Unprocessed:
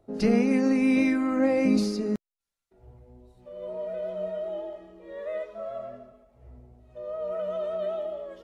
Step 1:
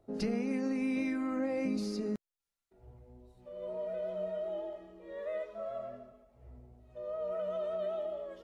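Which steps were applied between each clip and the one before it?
compression 3:1, threshold -28 dBFS, peak gain reduction 8.5 dB; trim -4 dB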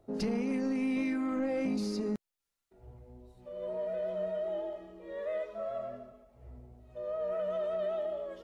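saturation -27.5 dBFS, distortion -20 dB; trim +3 dB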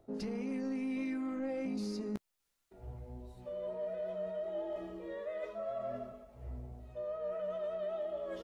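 reverse; compression 6:1, threshold -42 dBFS, peak gain reduction 12.5 dB; reverse; doubling 15 ms -11 dB; trim +4.5 dB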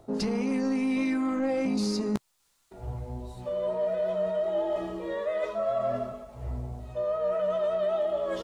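graphic EQ 125/1000/4000/8000 Hz +4/+6/+4/+6 dB; trim +8.5 dB

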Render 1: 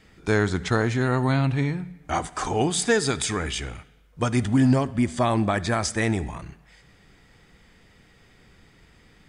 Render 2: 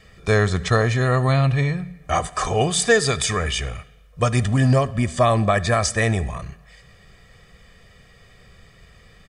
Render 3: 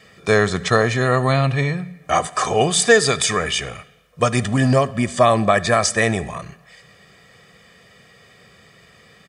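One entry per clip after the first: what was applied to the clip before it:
comb 1.7 ms, depth 67%; trim +3 dB
high-pass 160 Hz 12 dB/octave; trim +3.5 dB

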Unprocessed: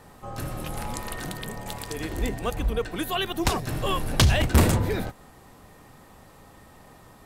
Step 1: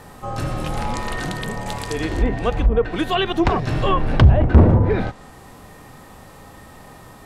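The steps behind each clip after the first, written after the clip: harmonic-percussive split harmonic +5 dB; low-pass that closes with the level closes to 830 Hz, closed at -14.5 dBFS; trim +5 dB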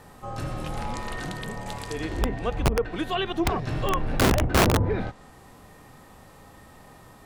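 integer overflow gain 7 dB; trim -7 dB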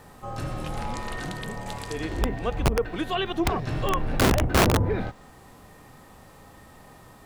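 word length cut 12-bit, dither triangular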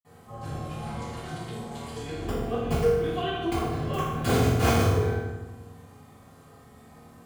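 reverberation RT60 1.1 s, pre-delay 46 ms

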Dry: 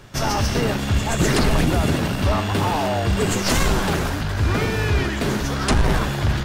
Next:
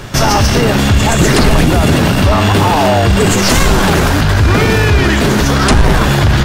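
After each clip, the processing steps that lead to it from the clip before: loudness maximiser +18 dB; trim -1 dB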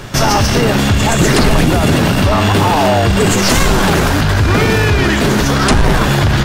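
peaking EQ 63 Hz -4.5 dB 0.66 oct; trim -1 dB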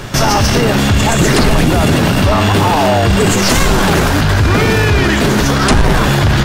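peak limiter -6 dBFS, peak gain reduction 4 dB; trim +3 dB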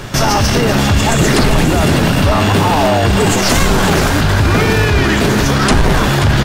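delay 532 ms -10.5 dB; trim -1 dB

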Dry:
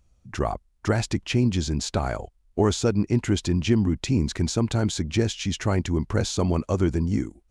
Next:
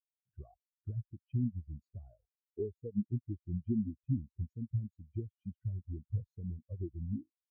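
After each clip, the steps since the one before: compression 2.5:1, threshold -31 dBFS, peak gain reduction 10.5 dB; spectral contrast expander 4:1; trim -6 dB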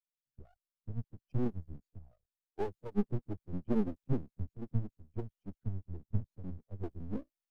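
coarse spectral quantiser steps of 15 dB; half-wave rectifier; three bands expanded up and down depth 40%; trim +5 dB

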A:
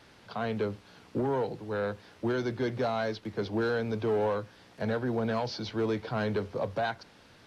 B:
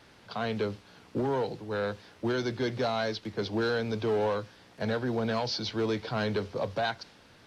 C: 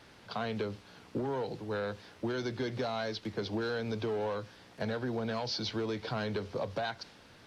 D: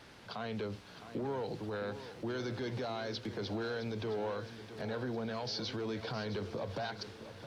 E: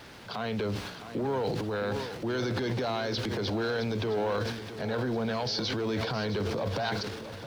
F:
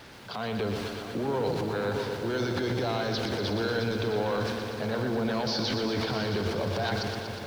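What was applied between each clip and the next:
dynamic bell 4.6 kHz, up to +7 dB, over -55 dBFS, Q 0.75
compression, threshold -31 dBFS, peak gain reduction 6.5 dB
peak limiter -32 dBFS, peak gain reduction 8.5 dB; bit-crushed delay 664 ms, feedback 55%, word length 12-bit, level -12 dB; trim +1 dB
word length cut 12-bit, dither none; transient shaper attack -2 dB, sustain +10 dB; trim +7 dB
bit-crushed delay 120 ms, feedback 80%, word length 9-bit, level -7 dB

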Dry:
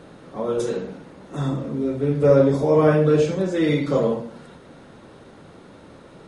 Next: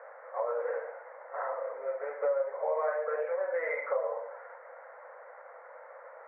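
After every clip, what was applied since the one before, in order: Chebyshev band-pass 500–2100 Hz, order 5; compression 5:1, threshold -30 dBFS, peak gain reduction 15.5 dB; trim +1.5 dB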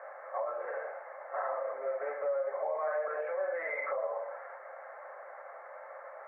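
peak limiter -28.5 dBFS, peak gain reduction 8 dB; comb of notches 480 Hz; trim +4 dB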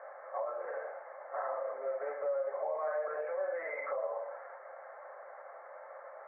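distance through air 500 m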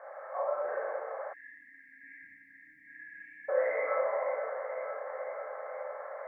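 echo whose repeats swap between lows and highs 246 ms, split 890 Hz, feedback 84%, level -8 dB; Schroeder reverb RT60 1.1 s, combs from 29 ms, DRR -3 dB; spectral selection erased 1.33–3.49 s, 310–1600 Hz

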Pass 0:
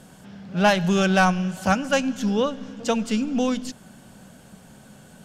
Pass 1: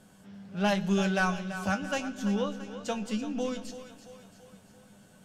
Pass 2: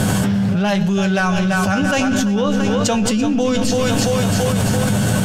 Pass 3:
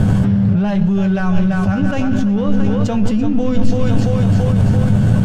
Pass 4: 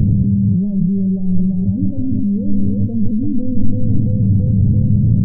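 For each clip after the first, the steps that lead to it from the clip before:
feedback comb 100 Hz, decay 0.15 s, harmonics all, mix 80%; two-band feedback delay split 390 Hz, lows 144 ms, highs 336 ms, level -11.5 dB; trim -4 dB
peaking EQ 110 Hz +13.5 dB 0.58 oct; level flattener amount 100%; trim +5 dB
crossover distortion -32 dBFS; RIAA curve playback; trim -4.5 dB
Gaussian low-pass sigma 24 samples; trim +1 dB

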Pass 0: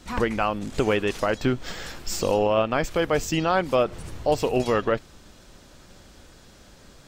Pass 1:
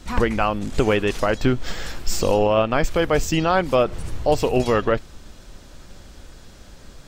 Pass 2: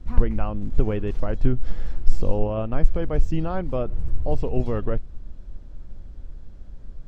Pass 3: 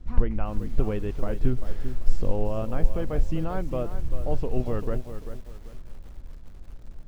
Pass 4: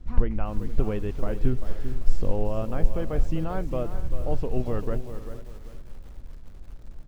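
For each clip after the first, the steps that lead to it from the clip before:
bass shelf 63 Hz +10 dB; trim +3 dB
tilt EQ -4 dB/octave; trim -13 dB
bit-crushed delay 392 ms, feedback 35%, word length 7-bit, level -10.5 dB; trim -3.5 dB
delay 469 ms -17 dB

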